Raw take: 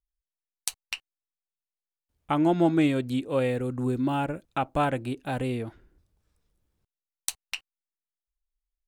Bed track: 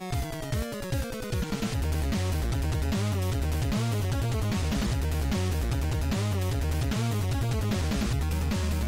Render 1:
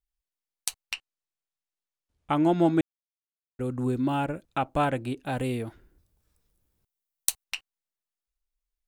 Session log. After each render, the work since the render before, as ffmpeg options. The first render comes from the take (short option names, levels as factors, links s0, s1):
-filter_complex "[0:a]asettb=1/sr,asplit=3[s0][s1][s2];[s0]atrim=end=0.944[s3];[s1]atrim=start=0.94:end=2.31,asetpts=PTS-STARTPTS,afade=t=in:d=0.004:c=qsin,afade=t=out:st=1.366:d=0.004:c=qsin,lowpass=9200[s4];[s2]atrim=start=2.306[s5];[s3][s4]acrossfade=d=0.004:c1=hsin:c2=qsin[s6];[s6][s5]acrossfade=d=0.004:c1=qsin:c2=hsin,asettb=1/sr,asplit=3[s7][s8][s9];[s7]atrim=end=5.384[s10];[s8]atrim=start=5.38:end=7.44,asetpts=PTS-STARTPTS,afade=t=in:d=0.004:c=qsin,afade=t=out:st=2.056:d=0.004:c=qsin,highshelf=f=9500:g=11.5[s11];[s9]atrim=start=7.436[s12];[s10][s11]acrossfade=d=0.004:c1=hsin:c2=qsin[s13];[s13][s12]acrossfade=d=0.004:c1=qsin:c2=hsin,asplit=3[s14][s15][s16];[s14]atrim=end=2.81,asetpts=PTS-STARTPTS,afade=t=out:st=2.806:d=0.004:c=hsin[s17];[s15]atrim=start=2.81:end=3.59,asetpts=PTS-STARTPTS,volume=0[s18];[s16]atrim=start=3.59,asetpts=PTS-STARTPTS,afade=t=in:d=0.004:c=hsin[s19];[s17][s18][s19]concat=n=3:v=0:a=1"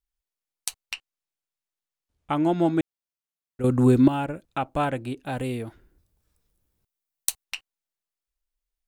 -filter_complex "[0:a]asplit=3[s0][s1][s2];[s0]atrim=end=3.642[s3];[s1]atrim=start=3.638:end=4.082,asetpts=PTS-STARTPTS,volume=3.16[s4];[s2]atrim=start=4.078[s5];[s3][s4]acrossfade=d=0.004:c1=hsin:c2=hsin[s6];[s6][s5]acrossfade=d=0.004:c1=hsin:c2=hsin"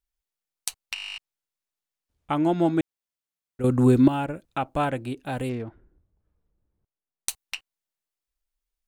-filter_complex "[0:a]asettb=1/sr,asplit=3[s0][s1][s2];[s0]atrim=end=5.494[s3];[s1]atrim=start=5.49:end=7.29,asetpts=PTS-STARTPTS,afade=t=in:d=0.004:c=qsin,afade=t=out:st=1.796:d=0.004:c=qsin,adynamicsmooth=sensitivity=5.5:basefreq=1400[s4];[s2]atrim=start=7.286[s5];[s3][s4]acrossfade=d=0.004:c1=hsin:c2=qsin[s6];[s6][s5]acrossfade=d=0.004:c1=qsin:c2=hsin,asplit=13[s7][s8][s9][s10][s11][s12][s13][s14][s15][s16][s17][s18][s19];[s7]atrim=end=0.962[s20];[s8]atrim=start=0.938:end=0.962[s21];[s9]atrim=start=0.938:end=0.962[s22];[s10]atrim=start=0.938:end=0.962[s23];[s11]atrim=start=0.938:end=0.962[s24];[s12]atrim=start=0.938:end=0.962[s25];[s13]atrim=start=0.938:end=0.962[s26];[s14]atrim=start=0.938:end=0.962[s27];[s15]atrim=start=0.938:end=0.962[s28];[s16]atrim=start=0.938:end=0.962[s29];[s17]atrim=start=0.938:end=0.962[s30];[s18]atrim=start=0.938:end=0.962[s31];[s19]atrim=start=1.178[s32];[s20][s21]acrossfade=d=0.004:c1=hsin:c2=hsin[s33];[s33][s22]acrossfade=d=0.004:c1=hsin:c2=hsin[s34];[s34][s23]acrossfade=d=0.004:c1=hsin:c2=hsin[s35];[s35][s24]acrossfade=d=0.004:c1=hsin:c2=hsin[s36];[s36][s25]acrossfade=d=0.004:c1=hsin:c2=hsin[s37];[s37][s26]acrossfade=d=0.004:c1=hsin:c2=hsin[s38];[s38][s27]acrossfade=d=0.004:c1=hsin:c2=hsin[s39];[s39][s28]acrossfade=d=0.004:c1=hsin:c2=hsin[s40];[s40][s29]acrossfade=d=0.004:c1=hsin:c2=hsin[s41];[s41][s30]acrossfade=d=0.004:c1=hsin:c2=hsin[s42];[s42][s31]acrossfade=d=0.004:c1=hsin:c2=hsin[s43];[s43][s32]acrossfade=d=0.004:c1=hsin:c2=hsin"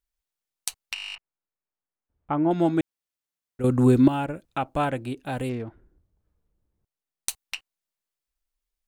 -filter_complex "[0:a]asettb=1/sr,asplit=3[s0][s1][s2];[s0]atrim=end=1.154[s3];[s1]atrim=start=1.15:end=2.51,asetpts=PTS-STARTPTS,afade=t=in:d=0.004:c=qsin,afade=t=out:st=1.356:d=0.004:c=qsin,lowpass=1500[s4];[s2]atrim=start=2.506[s5];[s3][s4]acrossfade=d=0.004:c1=hsin:c2=qsin[s6];[s6][s5]acrossfade=d=0.004:c1=qsin:c2=hsin"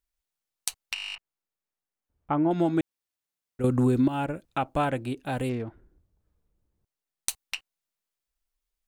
-af "acompressor=threshold=0.112:ratio=6"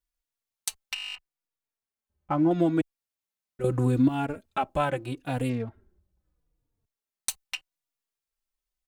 -filter_complex "[0:a]asplit=2[s0][s1];[s1]aeval=exprs='sgn(val(0))*max(abs(val(0))-0.0075,0)':c=same,volume=0.376[s2];[s0][s2]amix=inputs=2:normalize=0,asplit=2[s3][s4];[s4]adelay=3.6,afreqshift=-0.78[s5];[s3][s5]amix=inputs=2:normalize=1"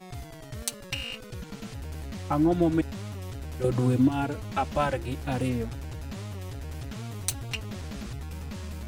-filter_complex "[1:a]volume=0.335[s0];[0:a][s0]amix=inputs=2:normalize=0"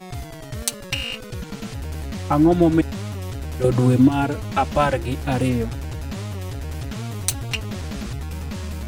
-af "volume=2.37,alimiter=limit=0.891:level=0:latency=1"